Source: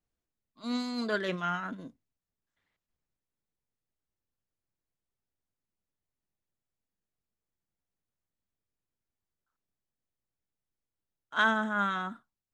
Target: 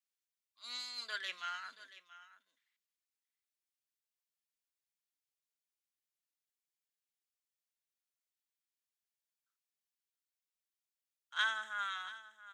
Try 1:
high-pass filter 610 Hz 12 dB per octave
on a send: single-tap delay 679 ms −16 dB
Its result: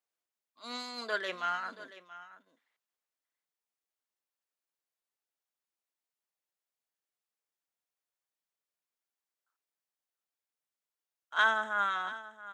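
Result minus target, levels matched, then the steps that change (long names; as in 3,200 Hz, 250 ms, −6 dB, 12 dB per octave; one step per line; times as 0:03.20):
500 Hz band +12.5 dB
change: high-pass filter 2,200 Hz 12 dB per octave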